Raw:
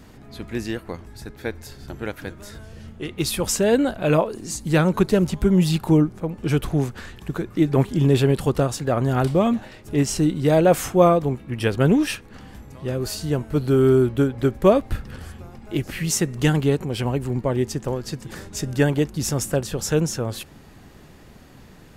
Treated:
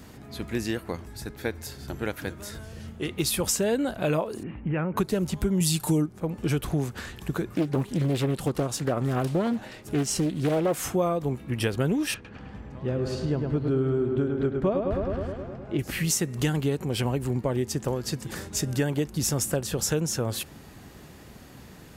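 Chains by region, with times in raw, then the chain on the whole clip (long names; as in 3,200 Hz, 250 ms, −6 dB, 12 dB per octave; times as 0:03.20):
0:04.43–0:04.97: Butterworth low-pass 2,800 Hz 72 dB per octave + downward compressor 5 to 1, threshold −23 dBFS
0:05.60–0:06.06: parametric band 8,800 Hz +14.5 dB 1.8 octaves + comb filter 6.7 ms, depth 69%
0:07.54–0:10.83: parametric band 71 Hz −7.5 dB 0.8 octaves + highs frequency-modulated by the lows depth 0.56 ms
0:12.14–0:15.79: head-to-tape spacing loss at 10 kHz 24 dB + feedback echo with a low-pass in the loop 105 ms, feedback 68%, low-pass 4,100 Hz, level −6 dB
whole clip: high-pass filter 41 Hz; high-shelf EQ 6,600 Hz +5.5 dB; downward compressor 4 to 1, threshold −23 dBFS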